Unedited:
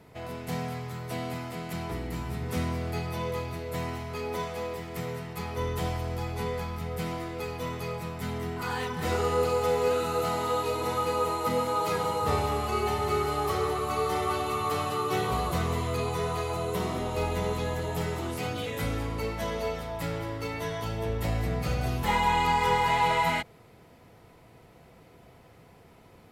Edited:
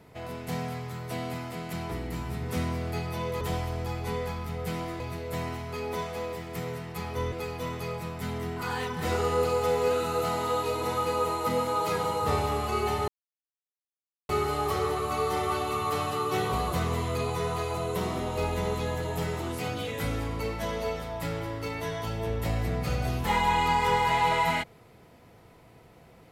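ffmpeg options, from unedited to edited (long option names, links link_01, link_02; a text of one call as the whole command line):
ffmpeg -i in.wav -filter_complex "[0:a]asplit=5[link_01][link_02][link_03][link_04][link_05];[link_01]atrim=end=3.412[link_06];[link_02]atrim=start=5.728:end=7.322[link_07];[link_03]atrim=start=3.408:end=5.732[link_08];[link_04]atrim=start=7.318:end=13.08,asetpts=PTS-STARTPTS,afade=type=out:start_time=5.758:duration=0.004:curve=hsin,apad=pad_dur=1.21[link_09];[link_05]atrim=start=13.08,asetpts=PTS-STARTPTS,afade=type=in:duration=0.004:curve=hsin[link_10];[link_06][link_07]acrossfade=duration=0.004:curve1=hsin:curve2=hsin[link_11];[link_11][link_08]acrossfade=duration=0.004:curve1=hsin:curve2=hsin[link_12];[link_09][link_10]concat=n=2:v=0:a=1[link_13];[link_12][link_13]acrossfade=duration=0.004:curve1=hsin:curve2=hsin" out.wav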